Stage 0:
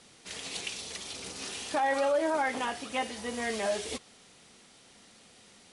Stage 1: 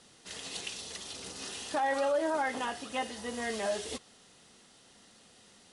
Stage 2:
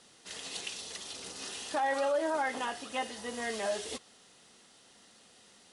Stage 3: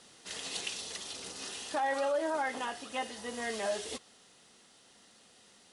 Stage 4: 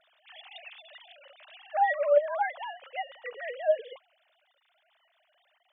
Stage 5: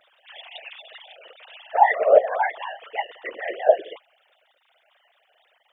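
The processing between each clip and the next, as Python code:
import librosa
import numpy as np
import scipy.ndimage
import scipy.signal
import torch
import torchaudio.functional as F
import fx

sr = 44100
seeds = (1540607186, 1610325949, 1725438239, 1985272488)

y1 = fx.notch(x, sr, hz=2300.0, q=8.7)
y1 = y1 * librosa.db_to_amplitude(-2.0)
y2 = fx.low_shelf(y1, sr, hz=190.0, db=-7.0)
y3 = fx.rider(y2, sr, range_db=3, speed_s=2.0)
y3 = y3 * librosa.db_to_amplitude(-1.0)
y4 = fx.sine_speech(y3, sr)
y4 = y4 * librosa.db_to_amplitude(5.0)
y5 = fx.whisperise(y4, sr, seeds[0])
y5 = y5 * librosa.db_to_amplitude(6.5)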